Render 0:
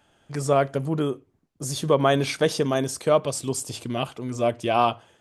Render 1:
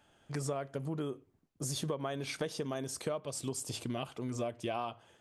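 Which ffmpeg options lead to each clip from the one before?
ffmpeg -i in.wav -af "acompressor=threshold=-28dB:ratio=12,volume=-4.5dB" out.wav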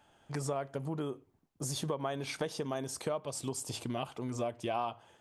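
ffmpeg -i in.wav -af "equalizer=frequency=870:width=2.2:gain=5.5" out.wav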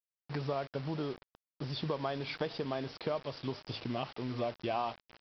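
ffmpeg -i in.wav -af "aecho=1:1:455|910|1365:0.0708|0.0276|0.0108,aresample=11025,acrusher=bits=7:mix=0:aa=0.000001,aresample=44100" out.wav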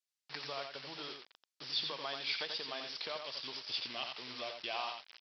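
ffmpeg -i in.wav -filter_complex "[0:a]bandpass=frequency=4700:width_type=q:width=0.89:csg=0,asplit=2[link_01][link_02];[link_02]aecho=0:1:87:0.501[link_03];[link_01][link_03]amix=inputs=2:normalize=0,volume=7.5dB" out.wav

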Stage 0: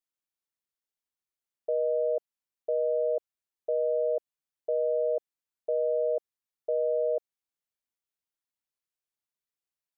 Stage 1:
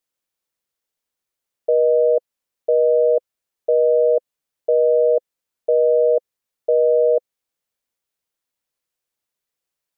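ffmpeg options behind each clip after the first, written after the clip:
ffmpeg -i in.wav -af "equalizer=frequency=510:width_type=o:width=0.36:gain=5.5,volume=8.5dB" out.wav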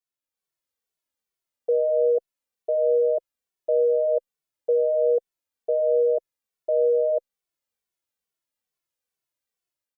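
ffmpeg -i in.wav -filter_complex "[0:a]dynaudnorm=framelen=160:gausssize=5:maxgain=6dB,asplit=2[link_01][link_02];[link_02]adelay=2.2,afreqshift=-2.3[link_03];[link_01][link_03]amix=inputs=2:normalize=1,volume=-7.5dB" out.wav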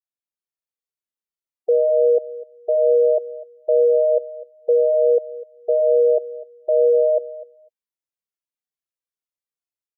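ffmpeg -i in.wav -af "aecho=1:1:251|502:0.141|0.0297,afftdn=noise_reduction=15:noise_floor=-37,volume=5dB" out.wav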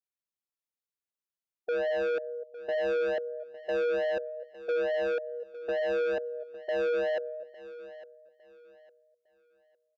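ffmpeg -i in.wav -af "asoftclip=type=tanh:threshold=-22dB,aecho=1:1:856|1712|2568:0.141|0.041|0.0119,volume=-5dB" out.wav

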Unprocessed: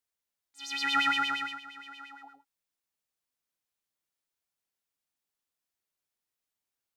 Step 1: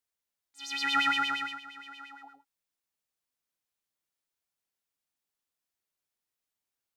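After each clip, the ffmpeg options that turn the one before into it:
ffmpeg -i in.wav -af anull out.wav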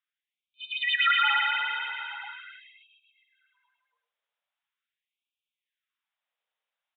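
ffmpeg -i in.wav -filter_complex "[0:a]aresample=8000,aresample=44100,asplit=7[link_01][link_02][link_03][link_04][link_05][link_06][link_07];[link_02]adelay=282,afreqshift=32,volume=-4.5dB[link_08];[link_03]adelay=564,afreqshift=64,volume=-10.7dB[link_09];[link_04]adelay=846,afreqshift=96,volume=-16.9dB[link_10];[link_05]adelay=1128,afreqshift=128,volume=-23.1dB[link_11];[link_06]adelay=1410,afreqshift=160,volume=-29.3dB[link_12];[link_07]adelay=1692,afreqshift=192,volume=-35.5dB[link_13];[link_01][link_08][link_09][link_10][link_11][link_12][link_13]amix=inputs=7:normalize=0,afftfilt=real='re*gte(b*sr/1024,400*pow(2300/400,0.5+0.5*sin(2*PI*0.42*pts/sr)))':imag='im*gte(b*sr/1024,400*pow(2300/400,0.5+0.5*sin(2*PI*0.42*pts/sr)))':win_size=1024:overlap=0.75,volume=4.5dB" out.wav

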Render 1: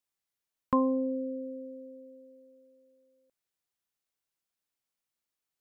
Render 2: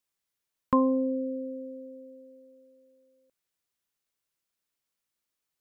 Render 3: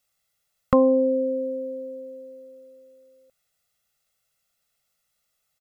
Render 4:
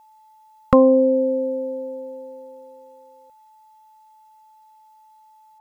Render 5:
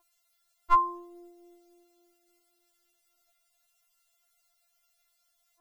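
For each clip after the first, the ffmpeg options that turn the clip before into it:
ffmpeg -i in.wav -af "equalizer=frequency=760:width_type=o:width=0.35:gain=-3.5,volume=3dB" out.wav
ffmpeg -i in.wav -af "aecho=1:1:1.5:0.93,volume=7dB" out.wav
ffmpeg -i in.wav -af "aeval=exprs='val(0)+0.002*sin(2*PI*870*n/s)':channel_layout=same,volume=4.5dB" out.wav
ffmpeg -i in.wav -af "afftfilt=real='re*4*eq(mod(b,16),0)':imag='im*4*eq(mod(b,16),0)':win_size=2048:overlap=0.75" out.wav

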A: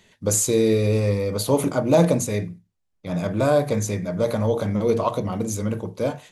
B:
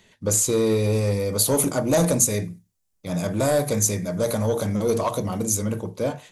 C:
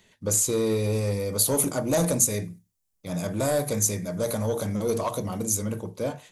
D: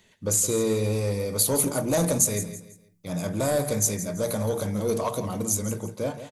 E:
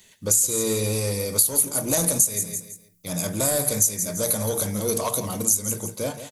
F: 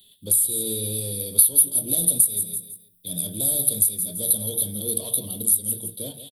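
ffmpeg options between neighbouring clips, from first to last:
ffmpeg -i in.wav -filter_complex "[0:a]acrossover=split=5800[link_01][link_02];[link_01]asoftclip=type=tanh:threshold=-13.5dB[link_03];[link_02]dynaudnorm=framelen=200:gausssize=9:maxgain=13dB[link_04];[link_03][link_04]amix=inputs=2:normalize=0" out.wav
ffmpeg -i in.wav -af "highshelf=frequency=9200:gain=5,volume=-4dB" out.wav
ffmpeg -i in.wav -af "aecho=1:1:166|332|498:0.237|0.0759|0.0243" out.wav
ffmpeg -i in.wav -af "crystalizer=i=3.5:c=0,acompressor=threshold=-18dB:ratio=4" out.wav
ffmpeg -i in.wav -filter_complex "[0:a]firequalizer=gain_entry='entry(360,0);entry(1100,-19);entry(2200,-17);entry(3400,13);entry(6400,-25);entry(9100,10)':delay=0.05:min_phase=1,acrossover=split=250|680|3800[link_01][link_02][link_03][link_04];[link_03]asoftclip=type=hard:threshold=-37dB[link_05];[link_01][link_02][link_05][link_04]amix=inputs=4:normalize=0,volume=-5.5dB" out.wav

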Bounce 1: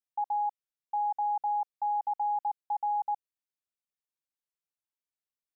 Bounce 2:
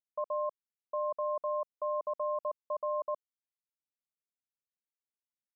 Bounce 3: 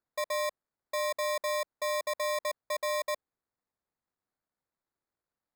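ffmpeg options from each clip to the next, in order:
ffmpeg -i in.wav -af "anlmdn=0.398,aeval=exprs='val(0)*sin(2*PI*230*n/s)':channel_layout=same,tiltshelf=frequency=680:gain=7" out.wav
ffmpeg -i in.wav -af "acrusher=samples=15:mix=1:aa=0.000001,volume=2dB" out.wav

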